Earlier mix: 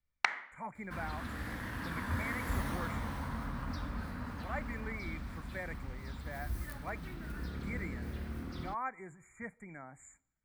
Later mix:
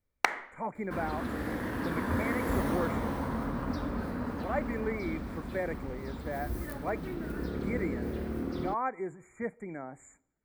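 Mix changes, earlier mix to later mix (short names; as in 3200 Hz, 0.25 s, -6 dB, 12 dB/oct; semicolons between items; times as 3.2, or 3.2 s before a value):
first sound: remove BPF 170–5000 Hz; second sound: add high shelf 12000 Hz +6 dB; master: add bell 410 Hz +14.5 dB 2 oct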